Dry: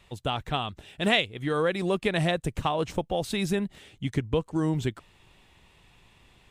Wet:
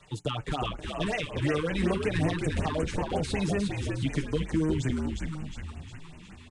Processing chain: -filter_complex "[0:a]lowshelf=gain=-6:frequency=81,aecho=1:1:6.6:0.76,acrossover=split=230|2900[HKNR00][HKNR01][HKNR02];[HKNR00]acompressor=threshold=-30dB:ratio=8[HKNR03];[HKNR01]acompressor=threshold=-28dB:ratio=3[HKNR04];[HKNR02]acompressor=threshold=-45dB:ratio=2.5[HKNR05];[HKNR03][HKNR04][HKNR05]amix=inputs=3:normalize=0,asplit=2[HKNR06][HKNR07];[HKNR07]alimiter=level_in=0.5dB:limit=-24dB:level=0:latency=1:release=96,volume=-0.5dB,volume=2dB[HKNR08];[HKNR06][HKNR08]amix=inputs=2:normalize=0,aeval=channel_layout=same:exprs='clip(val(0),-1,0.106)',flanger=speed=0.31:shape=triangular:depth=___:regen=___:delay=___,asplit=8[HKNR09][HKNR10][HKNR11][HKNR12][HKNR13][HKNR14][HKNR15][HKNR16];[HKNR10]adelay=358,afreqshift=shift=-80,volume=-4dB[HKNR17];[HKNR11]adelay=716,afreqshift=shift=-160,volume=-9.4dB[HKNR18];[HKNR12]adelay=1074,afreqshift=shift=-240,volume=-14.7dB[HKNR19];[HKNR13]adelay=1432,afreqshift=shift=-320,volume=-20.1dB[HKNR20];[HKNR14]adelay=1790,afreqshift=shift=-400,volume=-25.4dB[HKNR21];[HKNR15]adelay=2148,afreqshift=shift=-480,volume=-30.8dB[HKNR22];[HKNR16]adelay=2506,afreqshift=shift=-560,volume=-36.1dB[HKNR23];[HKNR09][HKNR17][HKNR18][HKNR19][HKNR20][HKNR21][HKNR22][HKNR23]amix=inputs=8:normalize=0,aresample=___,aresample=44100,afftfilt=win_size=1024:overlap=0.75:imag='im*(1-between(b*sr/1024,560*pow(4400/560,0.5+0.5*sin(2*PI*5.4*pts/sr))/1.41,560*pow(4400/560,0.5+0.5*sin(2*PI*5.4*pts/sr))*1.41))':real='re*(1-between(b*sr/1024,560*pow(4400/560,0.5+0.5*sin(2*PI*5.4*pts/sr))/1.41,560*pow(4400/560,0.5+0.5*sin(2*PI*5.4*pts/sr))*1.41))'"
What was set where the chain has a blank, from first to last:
8.9, -64, 7.4, 22050